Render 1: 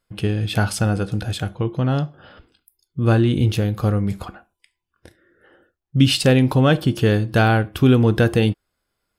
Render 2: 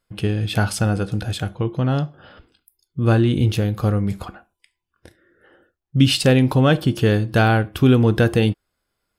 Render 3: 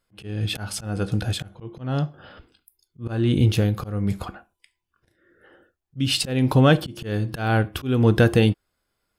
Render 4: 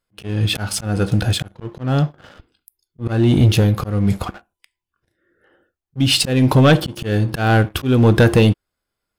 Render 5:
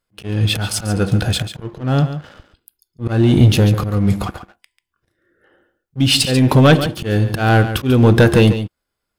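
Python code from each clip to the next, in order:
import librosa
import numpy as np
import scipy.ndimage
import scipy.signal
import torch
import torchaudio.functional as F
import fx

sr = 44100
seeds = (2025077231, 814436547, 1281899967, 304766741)

y1 = x
y2 = fx.auto_swell(y1, sr, attack_ms=259.0)
y3 = fx.leveller(y2, sr, passes=2)
y4 = y3 + 10.0 ** (-11.0 / 20.0) * np.pad(y3, (int(141 * sr / 1000.0), 0))[:len(y3)]
y4 = F.gain(torch.from_numpy(y4), 1.5).numpy()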